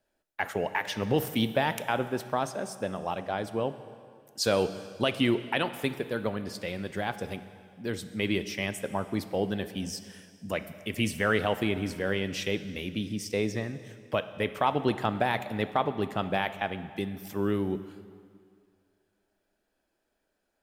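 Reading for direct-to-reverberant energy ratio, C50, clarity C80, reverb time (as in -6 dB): 11.5 dB, 12.5 dB, 13.5 dB, 2.2 s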